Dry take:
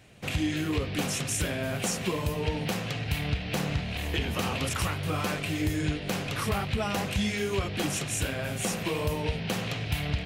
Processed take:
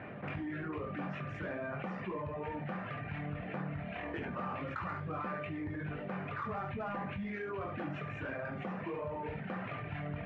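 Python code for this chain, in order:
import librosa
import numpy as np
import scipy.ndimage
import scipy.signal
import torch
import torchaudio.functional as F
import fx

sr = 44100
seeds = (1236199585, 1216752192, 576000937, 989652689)

p1 = scipy.signal.sosfilt(scipy.signal.butter(2, 180.0, 'highpass', fs=sr, output='sos'), x)
p2 = fx.dereverb_blind(p1, sr, rt60_s=1.6)
p3 = scipy.signal.sosfilt(scipy.signal.butter(4, 1700.0, 'lowpass', fs=sr, output='sos'), p2)
p4 = fx.peak_eq(p3, sr, hz=460.0, db=-4.5, octaves=1.8)
p5 = 10.0 ** (-34.5 / 20.0) * np.tanh(p4 / 10.0 ** (-34.5 / 20.0))
p6 = p4 + (p5 * 10.0 ** (-7.0 / 20.0))
p7 = fx.comb_fb(p6, sr, f0_hz=600.0, decay_s=0.44, harmonics='all', damping=0.0, mix_pct=80)
p8 = p7 + fx.room_early_taps(p7, sr, ms=(21, 69), db=(-7.5, -9.0), dry=0)
p9 = fx.env_flatten(p8, sr, amount_pct=70)
y = p9 * 10.0 ** (4.5 / 20.0)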